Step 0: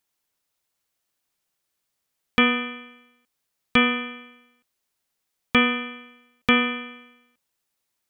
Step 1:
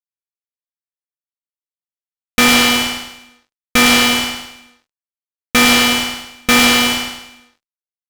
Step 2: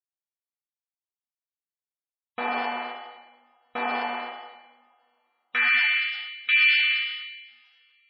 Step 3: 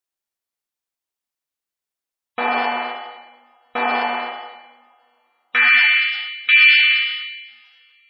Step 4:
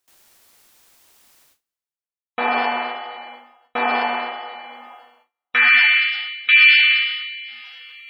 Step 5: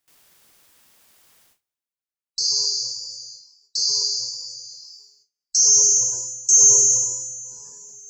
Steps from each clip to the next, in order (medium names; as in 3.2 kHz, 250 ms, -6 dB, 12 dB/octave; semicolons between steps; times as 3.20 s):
fuzz box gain 41 dB, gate -44 dBFS; on a send: feedback delay 106 ms, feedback 44%, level -5 dB; on the sum: trim +4 dB
band-pass sweep 800 Hz -> 2.5 kHz, 4.44–6.11 s; two-slope reverb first 0.91 s, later 3.2 s, from -24 dB, DRR 1 dB; spectral gate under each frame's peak -25 dB strong; trim -6.5 dB
peaking EQ 130 Hz -6 dB 1.2 oct; trim +8 dB
reverse; upward compressor, threshold -28 dBFS; reverse; gate with hold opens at -46 dBFS
split-band scrambler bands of 4 kHz; trim -1.5 dB